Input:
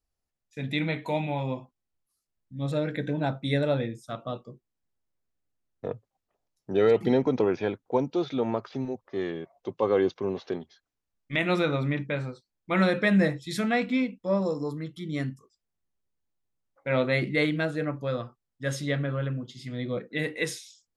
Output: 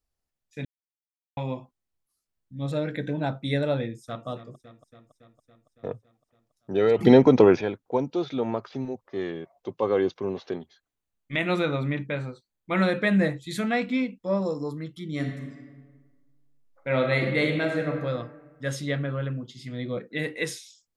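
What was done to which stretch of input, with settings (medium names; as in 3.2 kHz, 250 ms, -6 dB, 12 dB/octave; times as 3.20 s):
0.65–1.37 s: mute
3.80–4.27 s: echo throw 280 ms, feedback 70%, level -14.5 dB
6.99–7.61 s: gain +8.5 dB
10.51–13.67 s: band-stop 5.3 kHz, Q 5.5
15.10–17.97 s: reverb throw, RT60 1.5 s, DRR 3 dB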